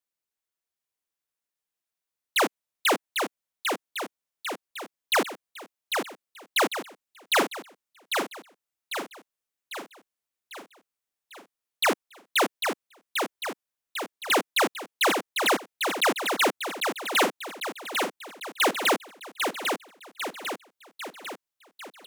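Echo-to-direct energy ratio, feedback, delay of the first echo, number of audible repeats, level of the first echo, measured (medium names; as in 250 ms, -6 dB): -3.5 dB, 55%, 798 ms, 6, -5.0 dB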